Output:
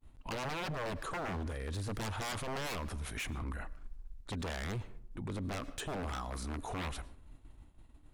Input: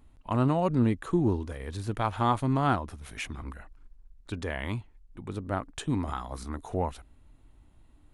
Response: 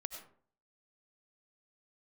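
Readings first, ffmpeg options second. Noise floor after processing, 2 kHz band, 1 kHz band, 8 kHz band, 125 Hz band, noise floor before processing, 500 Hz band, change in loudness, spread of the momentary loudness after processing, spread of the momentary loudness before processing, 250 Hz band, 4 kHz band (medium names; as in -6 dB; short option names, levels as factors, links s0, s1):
-59 dBFS, -2.0 dB, -10.0 dB, +1.5 dB, -9.5 dB, -59 dBFS, -9.0 dB, -9.5 dB, 12 LU, 14 LU, -13.0 dB, 0.0 dB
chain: -filter_complex "[0:a]agate=range=0.0224:threshold=0.00355:ratio=3:detection=peak,aeval=exprs='0.0299*(abs(mod(val(0)/0.0299+3,4)-2)-1)':c=same,asplit=2[s0][s1];[1:a]atrim=start_sample=2205,asetrate=39249,aresample=44100[s2];[s1][s2]afir=irnorm=-1:irlink=0,volume=0.2[s3];[s0][s3]amix=inputs=2:normalize=0,alimiter=level_in=4.47:limit=0.0631:level=0:latency=1:release=21,volume=0.224,volume=1.68"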